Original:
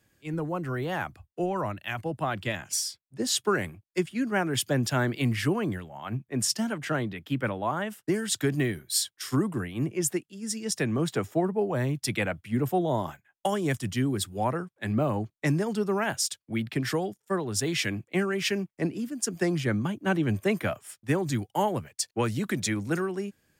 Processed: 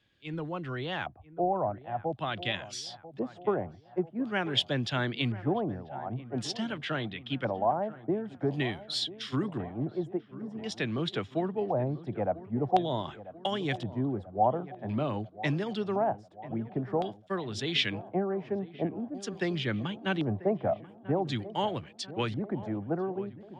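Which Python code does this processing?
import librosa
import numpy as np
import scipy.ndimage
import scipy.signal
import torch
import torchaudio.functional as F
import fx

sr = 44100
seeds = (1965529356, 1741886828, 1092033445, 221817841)

y = fx.filter_lfo_lowpass(x, sr, shape='square', hz=0.47, low_hz=740.0, high_hz=3500.0, q=3.9)
y = fx.echo_wet_lowpass(y, sr, ms=990, feedback_pct=56, hz=1600.0, wet_db=-16)
y = F.gain(torch.from_numpy(y), -5.0).numpy()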